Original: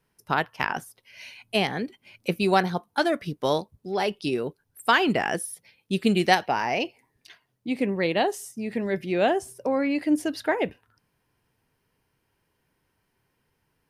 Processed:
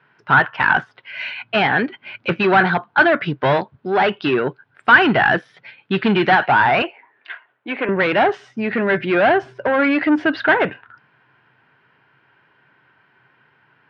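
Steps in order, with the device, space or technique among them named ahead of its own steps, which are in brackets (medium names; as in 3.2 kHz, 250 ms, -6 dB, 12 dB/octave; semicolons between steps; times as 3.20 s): overdrive pedal into a guitar cabinet (overdrive pedal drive 25 dB, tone 2.4 kHz, clips at -6 dBFS; cabinet simulation 83–3400 Hz, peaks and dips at 130 Hz +10 dB, 490 Hz -5 dB, 1.5 kHz +9 dB); 6.82–7.89 s: three-band isolator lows -23 dB, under 320 Hz, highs -23 dB, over 3.5 kHz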